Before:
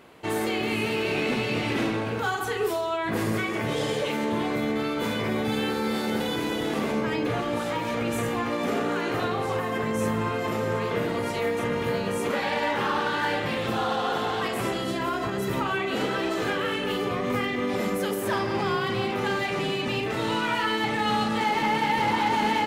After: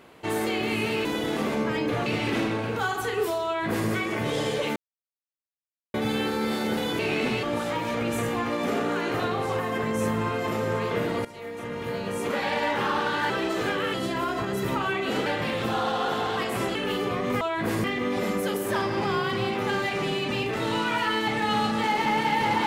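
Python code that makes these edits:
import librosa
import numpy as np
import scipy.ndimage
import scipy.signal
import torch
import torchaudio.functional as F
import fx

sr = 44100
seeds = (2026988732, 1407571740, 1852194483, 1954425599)

y = fx.edit(x, sr, fx.swap(start_s=1.05, length_s=0.44, other_s=6.42, other_length_s=1.01),
    fx.duplicate(start_s=2.89, length_s=0.43, to_s=17.41),
    fx.silence(start_s=4.19, length_s=1.18),
    fx.fade_in_from(start_s=11.25, length_s=1.23, floor_db=-17.0),
    fx.swap(start_s=13.3, length_s=1.49, other_s=16.11, other_length_s=0.64), tone=tone)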